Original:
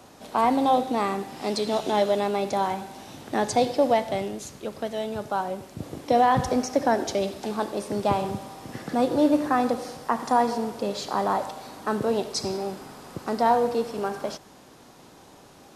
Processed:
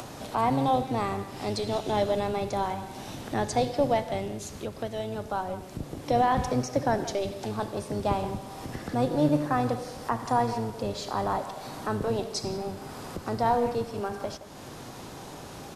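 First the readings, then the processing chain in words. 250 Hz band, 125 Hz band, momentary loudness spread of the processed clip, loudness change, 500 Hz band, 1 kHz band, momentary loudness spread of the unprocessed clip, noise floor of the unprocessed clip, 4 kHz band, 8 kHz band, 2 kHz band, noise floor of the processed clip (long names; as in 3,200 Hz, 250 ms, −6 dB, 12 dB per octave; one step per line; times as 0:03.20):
−3.5 dB, +4.5 dB, 14 LU, −3.5 dB, −3.5 dB, −4.0 dB, 14 LU, −51 dBFS, −3.5 dB, −3.0 dB, −3.5 dB, −43 dBFS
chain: sub-octave generator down 1 octave, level −2 dB
upward compression, threshold −26 dBFS
far-end echo of a speakerphone 170 ms, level −14 dB
level −4 dB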